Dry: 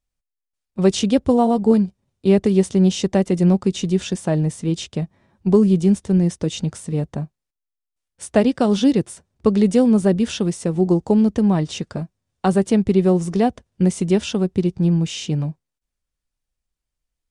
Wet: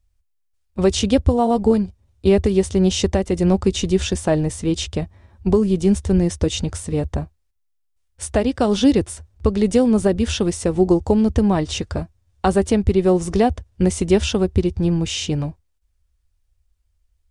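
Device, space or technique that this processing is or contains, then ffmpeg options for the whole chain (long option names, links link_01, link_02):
car stereo with a boomy subwoofer: -af "lowshelf=frequency=110:width_type=q:width=3:gain=11,alimiter=limit=-10dB:level=0:latency=1:release=418,volume=4.5dB"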